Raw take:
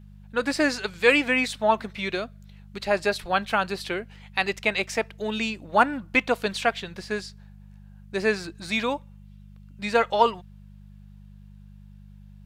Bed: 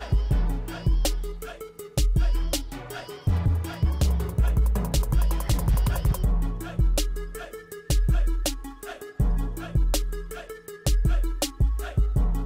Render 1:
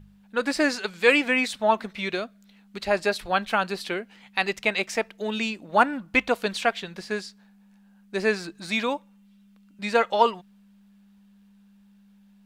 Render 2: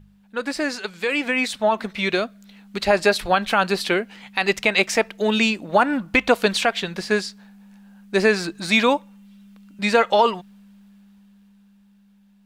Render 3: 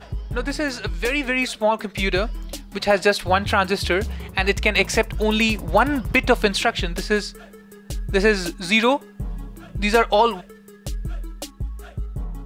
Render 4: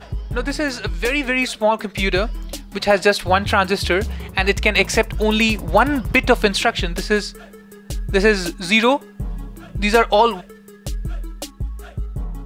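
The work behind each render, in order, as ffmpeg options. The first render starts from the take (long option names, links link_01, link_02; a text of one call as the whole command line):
ffmpeg -i in.wav -af "bandreject=frequency=50:width_type=h:width=4,bandreject=frequency=100:width_type=h:width=4,bandreject=frequency=150:width_type=h:width=4" out.wav
ffmpeg -i in.wav -af "alimiter=limit=-14.5dB:level=0:latency=1:release=107,dynaudnorm=framelen=210:gausssize=17:maxgain=9dB" out.wav
ffmpeg -i in.wav -i bed.wav -filter_complex "[1:a]volume=-6.5dB[link_01];[0:a][link_01]amix=inputs=2:normalize=0" out.wav
ffmpeg -i in.wav -af "volume=2.5dB" out.wav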